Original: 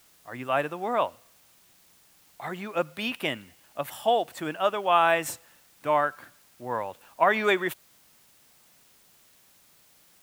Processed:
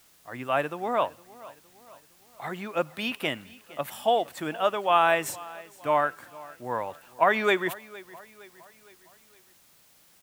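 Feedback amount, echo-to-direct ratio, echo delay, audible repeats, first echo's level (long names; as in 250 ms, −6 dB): 49%, −19.5 dB, 462 ms, 3, −20.5 dB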